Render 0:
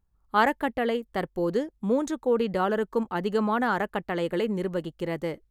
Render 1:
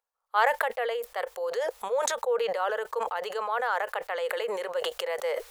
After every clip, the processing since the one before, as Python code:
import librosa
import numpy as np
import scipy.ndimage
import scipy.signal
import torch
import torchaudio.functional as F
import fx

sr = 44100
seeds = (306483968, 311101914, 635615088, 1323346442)

y = fx.rider(x, sr, range_db=10, speed_s=2.0)
y = scipy.signal.sosfilt(scipy.signal.ellip(4, 1.0, 40, 480.0, 'highpass', fs=sr, output='sos'), y)
y = fx.sustainer(y, sr, db_per_s=23.0)
y = y * 10.0 ** (-2.0 / 20.0)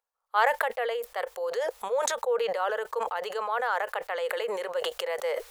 y = x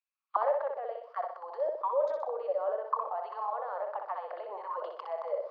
y = fx.auto_wah(x, sr, base_hz=570.0, top_hz=2500.0, q=9.6, full_db=-25.5, direction='down')
y = fx.cabinet(y, sr, low_hz=240.0, low_slope=12, high_hz=5600.0, hz=(340.0, 500.0, 1100.0, 4800.0), db=(8, -7, 9, 9))
y = fx.echo_feedback(y, sr, ms=62, feedback_pct=45, wet_db=-5.0)
y = y * 10.0 ** (5.0 / 20.0)